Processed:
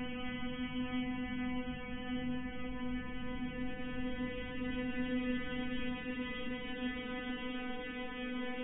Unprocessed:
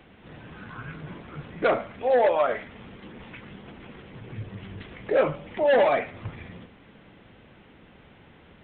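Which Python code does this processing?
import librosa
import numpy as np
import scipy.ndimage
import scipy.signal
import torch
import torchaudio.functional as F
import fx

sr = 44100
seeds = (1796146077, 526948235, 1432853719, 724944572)

y = fx.robotise(x, sr, hz=250.0)
y = fx.spec_topn(y, sr, count=32)
y = fx.paulstretch(y, sr, seeds[0], factor=33.0, window_s=0.25, from_s=4.64)
y = y * 10.0 ** (6.0 / 20.0)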